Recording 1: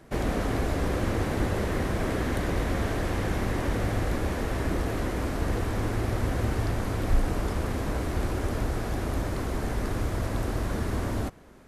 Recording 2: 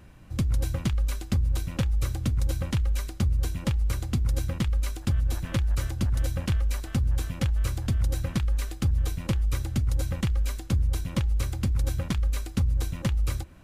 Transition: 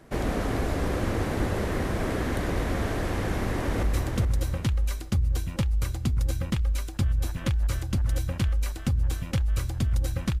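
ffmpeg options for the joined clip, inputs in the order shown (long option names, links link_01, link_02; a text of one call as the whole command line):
ffmpeg -i cue0.wav -i cue1.wav -filter_complex "[0:a]apad=whole_dur=10.4,atrim=end=10.4,atrim=end=3.832[link_01];[1:a]atrim=start=1.908:end=8.48[link_02];[link_01][link_02]acrossfade=duration=0.004:curve1=hsin:curve2=hsin,asplit=2[link_03][link_04];[link_04]afade=type=in:start_time=3.35:duration=0.01,afade=type=out:start_time=3.83:duration=0.01,aecho=0:1:420|840|1260|1680:0.562341|0.168702|0.0506107|0.0151832[link_05];[link_03][link_05]amix=inputs=2:normalize=0" out.wav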